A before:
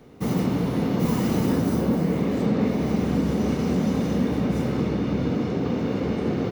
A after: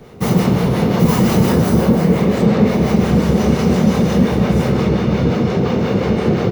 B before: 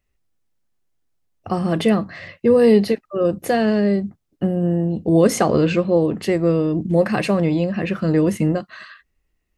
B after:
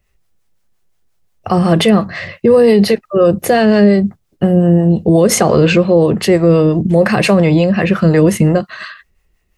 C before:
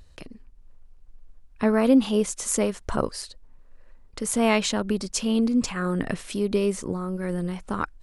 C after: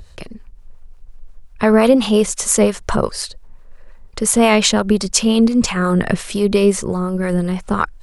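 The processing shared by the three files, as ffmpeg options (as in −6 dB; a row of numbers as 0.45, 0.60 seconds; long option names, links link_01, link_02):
-filter_complex "[0:a]equalizer=frequency=280:width=7.2:gain=-15,acrossover=split=560[link_01][link_02];[link_01]aeval=exprs='val(0)*(1-0.5/2+0.5/2*cos(2*PI*5.7*n/s))':channel_layout=same[link_03];[link_02]aeval=exprs='val(0)*(1-0.5/2-0.5/2*cos(2*PI*5.7*n/s))':channel_layout=same[link_04];[link_03][link_04]amix=inputs=2:normalize=0,alimiter=level_in=14dB:limit=-1dB:release=50:level=0:latency=1,volume=-1dB"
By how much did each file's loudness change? +9.0, +7.0, +9.0 LU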